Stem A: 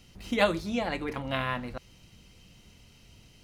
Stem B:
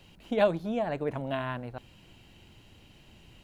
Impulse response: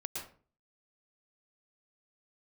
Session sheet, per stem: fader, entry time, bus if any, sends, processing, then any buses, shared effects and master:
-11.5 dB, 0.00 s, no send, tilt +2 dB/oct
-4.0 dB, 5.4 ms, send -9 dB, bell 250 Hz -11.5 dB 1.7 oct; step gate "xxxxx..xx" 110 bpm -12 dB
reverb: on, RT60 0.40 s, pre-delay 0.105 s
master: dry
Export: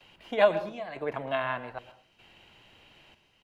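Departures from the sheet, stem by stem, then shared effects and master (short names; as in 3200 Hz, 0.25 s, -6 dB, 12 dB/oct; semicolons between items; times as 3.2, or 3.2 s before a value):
stem B -4.0 dB -> +3.5 dB; master: extra three-band isolator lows -15 dB, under 180 Hz, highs -13 dB, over 3600 Hz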